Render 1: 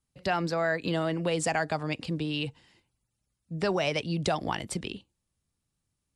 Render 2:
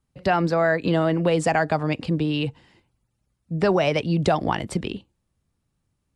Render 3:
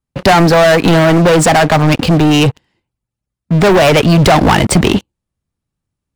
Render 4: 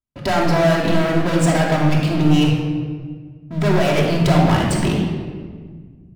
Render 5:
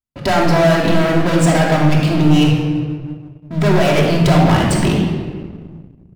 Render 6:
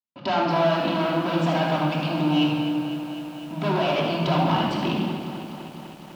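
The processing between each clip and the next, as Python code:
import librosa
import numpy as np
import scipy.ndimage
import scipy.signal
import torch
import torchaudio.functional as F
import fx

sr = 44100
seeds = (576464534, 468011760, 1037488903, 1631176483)

y1 = fx.high_shelf(x, sr, hz=2700.0, db=-10.5)
y1 = y1 * librosa.db_to_amplitude(8.5)
y2 = fx.leveller(y1, sr, passes=5)
y2 = fx.rider(y2, sr, range_db=10, speed_s=2.0)
y2 = y2 * librosa.db_to_amplitude(3.0)
y3 = fx.room_shoebox(y2, sr, seeds[0], volume_m3=1900.0, walls='mixed', distance_m=2.9)
y3 = y3 * librosa.db_to_amplitude(-14.5)
y4 = fx.leveller(y3, sr, passes=1)
y5 = fx.cabinet(y4, sr, low_hz=220.0, low_slope=12, high_hz=4600.0, hz=(230.0, 450.0, 970.0, 1900.0, 2900.0), db=(4, -8, 6, -9, 4))
y5 = y5 + 10.0 ** (-10.5 / 20.0) * np.pad(y5, (int(77 * sr / 1000.0), 0))[:len(y5)]
y5 = fx.echo_crushed(y5, sr, ms=251, feedback_pct=80, bits=6, wet_db=-13)
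y5 = y5 * librosa.db_to_amplitude(-8.0)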